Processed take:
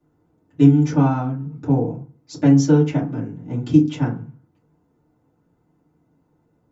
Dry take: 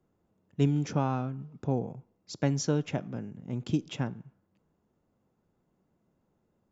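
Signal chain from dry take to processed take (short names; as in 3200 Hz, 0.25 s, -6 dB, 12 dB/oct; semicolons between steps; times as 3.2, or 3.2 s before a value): FDN reverb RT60 0.32 s, low-frequency decay 1.3×, high-frequency decay 0.45×, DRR -8 dB; gain -1 dB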